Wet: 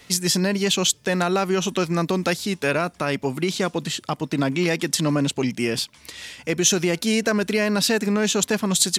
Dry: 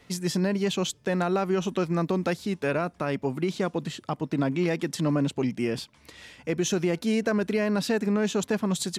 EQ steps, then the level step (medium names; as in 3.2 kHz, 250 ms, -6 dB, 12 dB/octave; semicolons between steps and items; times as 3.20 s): treble shelf 2.2 kHz +11.5 dB; +3.0 dB